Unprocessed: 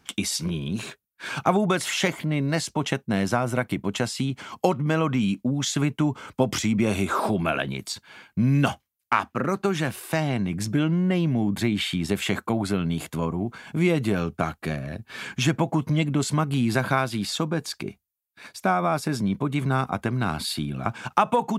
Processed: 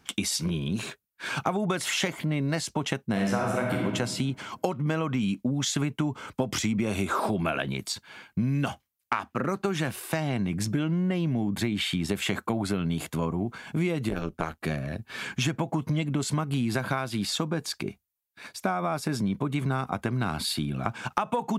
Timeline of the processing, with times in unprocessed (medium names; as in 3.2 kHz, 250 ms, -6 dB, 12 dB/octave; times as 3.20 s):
3.11–3.85 s: reverb throw, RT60 1.2 s, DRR -1.5 dB
14.09–14.61 s: AM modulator 160 Hz, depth 85%
whole clip: compression, threshold -23 dBFS